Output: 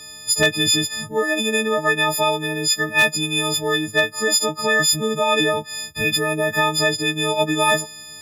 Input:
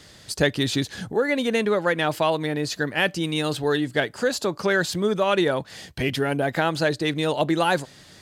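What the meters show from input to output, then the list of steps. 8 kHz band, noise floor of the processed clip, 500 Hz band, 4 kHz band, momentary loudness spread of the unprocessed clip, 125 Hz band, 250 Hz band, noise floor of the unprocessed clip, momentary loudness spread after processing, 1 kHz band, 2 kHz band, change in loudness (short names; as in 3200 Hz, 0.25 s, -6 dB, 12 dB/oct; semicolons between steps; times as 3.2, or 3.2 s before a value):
+14.0 dB, -39 dBFS, +1.0 dB, +9.0 dB, 5 LU, -0.5 dB, -0.5 dB, -49 dBFS, 5 LU, +4.0 dB, +6.5 dB, +5.0 dB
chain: frequency quantiser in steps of 6 st; wavefolder -7 dBFS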